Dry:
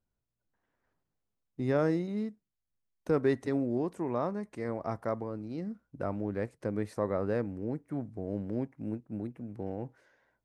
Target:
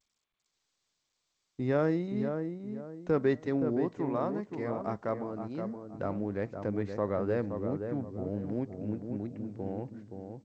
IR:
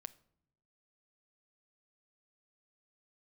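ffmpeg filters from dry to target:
-filter_complex "[0:a]agate=range=-17dB:threshold=-56dB:ratio=16:detection=peak,lowpass=5000,asettb=1/sr,asplit=3[link_01][link_02][link_03];[link_01]atrim=end=4.094[link_04];[link_02]atrim=start=4.09:end=6.3,asetpts=PTS-STARTPTS,afade=type=in:duration=0.004:curve=qsin,afade=type=out:start_time=2.206:duration=0.004:curve=qsin,adynamicequalizer=threshold=0.00447:dfrequency=110:dqfactor=1:tfrequency=110:tqfactor=1:attack=5:release=100:ratio=0.375:range=2:mode=cutabove:tftype=bell[link_05];[link_03]atrim=start=6.296[link_06];[link_04][link_05]acrossfade=duration=0.004:curve1=hsin:curve2=qsin[link_07];[link_07][link_06]acrossfade=duration=0.004:curve1=qsin:curve2=hsin,asplit=2[link_08][link_09];[link_09]adelay=522,lowpass=frequency=1300:poles=1,volume=-6dB,asplit=2[link_10][link_11];[link_11]adelay=522,lowpass=frequency=1300:poles=1,volume=0.34,asplit=2[link_12][link_13];[link_13]adelay=522,lowpass=frequency=1300:poles=1,volume=0.34,asplit=2[link_14][link_15];[link_15]adelay=522,lowpass=frequency=1300:poles=1,volume=0.34[link_16];[link_08][link_10][link_12][link_14][link_16]amix=inputs=5:normalize=0" -ar 16000 -c:a g722

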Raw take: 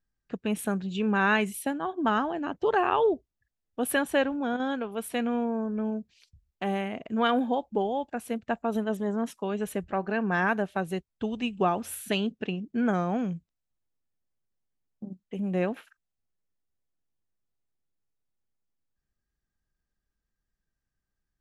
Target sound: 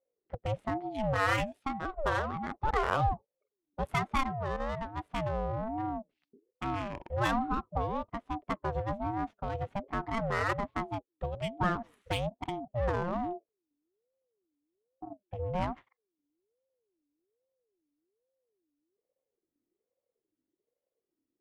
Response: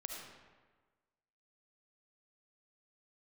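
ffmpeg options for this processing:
-af "adynamicsmooth=sensitivity=4.5:basefreq=1100,aeval=exprs='val(0)*sin(2*PI*410*n/s+410*0.3/1.2*sin(2*PI*1.2*n/s))':channel_layout=same,volume=-1.5dB"

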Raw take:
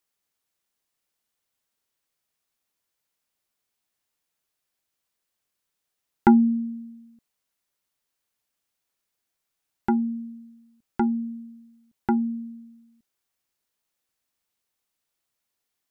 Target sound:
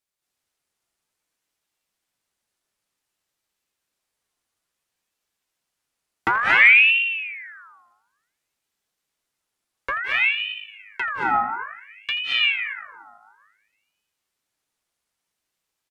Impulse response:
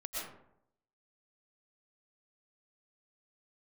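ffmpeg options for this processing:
-filter_complex "[0:a]asplit=4[link_01][link_02][link_03][link_04];[link_02]adelay=82,afreqshift=52,volume=-15.5dB[link_05];[link_03]adelay=164,afreqshift=104,volume=-25.4dB[link_06];[link_04]adelay=246,afreqshift=156,volume=-35.3dB[link_07];[link_01][link_05][link_06][link_07]amix=inputs=4:normalize=0,aeval=exprs='clip(val(0),-1,0.112)':channel_layout=same[link_08];[1:a]atrim=start_sample=2205,asetrate=23814,aresample=44100[link_09];[link_08][link_09]afir=irnorm=-1:irlink=0,aeval=exprs='val(0)*sin(2*PI*1900*n/s+1900*0.45/0.57*sin(2*PI*0.57*n/s))':channel_layout=same,volume=1dB"

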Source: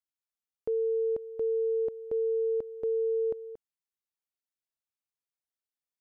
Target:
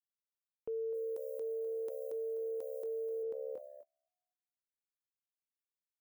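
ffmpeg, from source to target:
ffmpeg -i in.wav -filter_complex "[0:a]aemphasis=mode=production:type=bsi,asplit=5[link_01][link_02][link_03][link_04][link_05];[link_02]adelay=252,afreqshift=69,volume=-14.5dB[link_06];[link_03]adelay=504,afreqshift=138,volume=-22.7dB[link_07];[link_04]adelay=756,afreqshift=207,volume=-30.9dB[link_08];[link_05]adelay=1008,afreqshift=276,volume=-39dB[link_09];[link_01][link_06][link_07][link_08][link_09]amix=inputs=5:normalize=0,agate=range=-31dB:threshold=-50dB:ratio=16:detection=peak,asplit=3[link_10][link_11][link_12];[link_10]afade=type=out:start_time=0.93:duration=0.02[link_13];[link_11]bass=frequency=250:gain=-12,treble=frequency=4000:gain=15,afade=type=in:start_time=0.93:duration=0.02,afade=type=out:start_time=3.22:duration=0.02[link_14];[link_12]afade=type=in:start_time=3.22:duration=0.02[link_15];[link_13][link_14][link_15]amix=inputs=3:normalize=0,acompressor=threshold=-31dB:ratio=6,alimiter=level_in=11dB:limit=-24dB:level=0:latency=1:release=10,volume=-11dB,volume=1dB" out.wav

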